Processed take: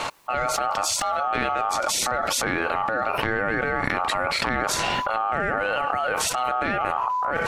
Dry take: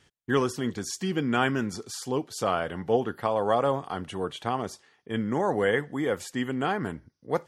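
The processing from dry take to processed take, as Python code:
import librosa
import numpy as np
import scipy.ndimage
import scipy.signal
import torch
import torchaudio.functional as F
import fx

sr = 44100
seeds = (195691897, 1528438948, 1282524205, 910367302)

p1 = fx.high_shelf(x, sr, hz=2400.0, db=-8.5)
p2 = fx.transient(p1, sr, attack_db=-11, sustain_db=5)
p3 = fx.backlash(p2, sr, play_db=-27.0)
p4 = p2 + (p3 * 10.0 ** (-12.0 / 20.0))
p5 = p4 * np.sin(2.0 * np.pi * 1000.0 * np.arange(len(p4)) / sr)
y = fx.env_flatten(p5, sr, amount_pct=100)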